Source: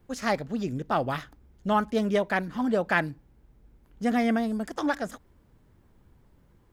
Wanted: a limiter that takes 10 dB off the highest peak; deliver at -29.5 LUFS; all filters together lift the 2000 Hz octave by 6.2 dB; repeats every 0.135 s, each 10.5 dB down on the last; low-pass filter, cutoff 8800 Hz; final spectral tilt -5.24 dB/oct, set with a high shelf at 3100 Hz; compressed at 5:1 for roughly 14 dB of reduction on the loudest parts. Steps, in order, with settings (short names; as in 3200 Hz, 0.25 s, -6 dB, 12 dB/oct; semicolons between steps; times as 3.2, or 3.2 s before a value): LPF 8800 Hz; bell 2000 Hz +6.5 dB; high shelf 3100 Hz +4 dB; compressor 5:1, threshold -31 dBFS; limiter -27 dBFS; feedback echo 0.135 s, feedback 30%, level -10.5 dB; gain +7.5 dB